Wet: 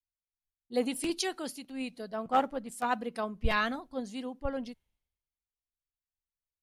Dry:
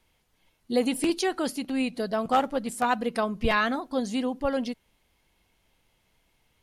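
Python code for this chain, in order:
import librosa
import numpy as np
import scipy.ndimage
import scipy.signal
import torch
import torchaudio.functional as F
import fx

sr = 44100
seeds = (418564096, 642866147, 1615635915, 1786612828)

y = fx.band_widen(x, sr, depth_pct=100)
y = y * librosa.db_to_amplitude(-7.5)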